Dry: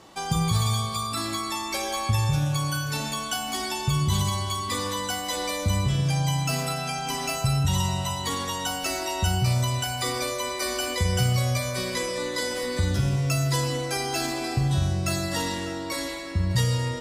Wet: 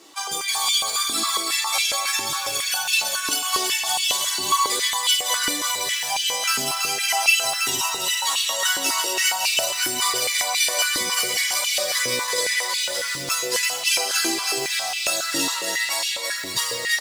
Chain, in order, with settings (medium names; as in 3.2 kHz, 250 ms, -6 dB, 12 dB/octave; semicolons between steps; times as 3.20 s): tilt shelf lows -4.5 dB, about 1.4 kHz; bouncing-ball echo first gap 330 ms, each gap 0.7×, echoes 5; chorus voices 2, 0.39 Hz, delay 12 ms, depth 4.1 ms; modulation noise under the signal 24 dB; treble shelf 2.6 kHz +7.5 dB; step-sequenced high-pass 7.3 Hz 310–2700 Hz